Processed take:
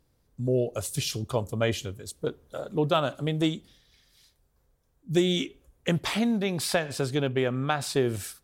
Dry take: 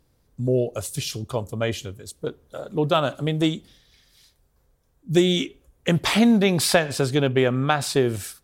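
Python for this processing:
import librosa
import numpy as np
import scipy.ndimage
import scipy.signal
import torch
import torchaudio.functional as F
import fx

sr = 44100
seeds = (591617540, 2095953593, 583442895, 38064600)

y = fx.rider(x, sr, range_db=4, speed_s=0.5)
y = F.gain(torch.from_numpy(y), -5.0).numpy()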